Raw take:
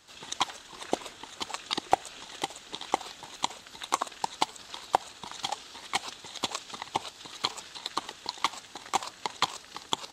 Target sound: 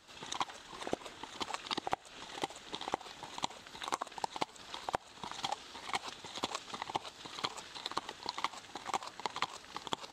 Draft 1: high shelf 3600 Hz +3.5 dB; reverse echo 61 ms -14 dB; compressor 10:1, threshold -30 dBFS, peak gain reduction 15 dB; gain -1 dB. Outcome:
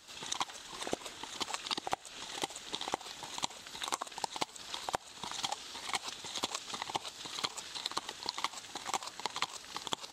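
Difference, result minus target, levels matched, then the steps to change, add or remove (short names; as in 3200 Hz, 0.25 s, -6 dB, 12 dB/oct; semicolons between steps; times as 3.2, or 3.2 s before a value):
8000 Hz band +5.0 dB
change: high shelf 3600 Hz -7 dB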